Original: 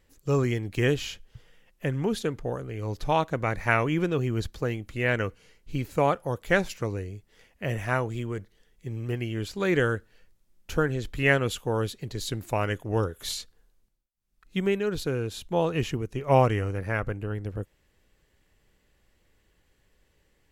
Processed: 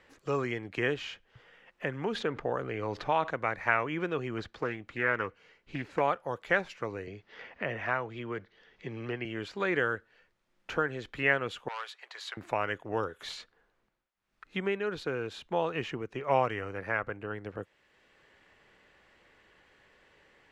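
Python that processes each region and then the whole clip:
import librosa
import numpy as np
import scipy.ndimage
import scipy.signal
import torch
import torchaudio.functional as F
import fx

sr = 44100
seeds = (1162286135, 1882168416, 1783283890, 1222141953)

y = fx.chain(x, sr, fx.high_shelf(hz=7700.0, db=-12.0),
    fx.env_flatten(amount_pct=50), at=(2.15, 3.31))
y = fx.chain(y, sr, fx.high_shelf(hz=12000.0, db=-11.0),
    fx.doppler_dist(depth_ms=0.26), at=(4.38, 6.01))
y = fx.chain(y, sr, fx.lowpass(hz=5500.0, slope=24),
    fx.band_squash(depth_pct=40), at=(7.07, 9.25))
y = fx.chain(y, sr, fx.highpass(hz=790.0, slope=24),
    fx.transformer_sat(knee_hz=3700.0), at=(11.68, 12.37))
y = scipy.signal.sosfilt(scipy.signal.butter(2, 1600.0, 'lowpass', fs=sr, output='sos'), y)
y = fx.tilt_eq(y, sr, slope=4.5)
y = fx.band_squash(y, sr, depth_pct=40)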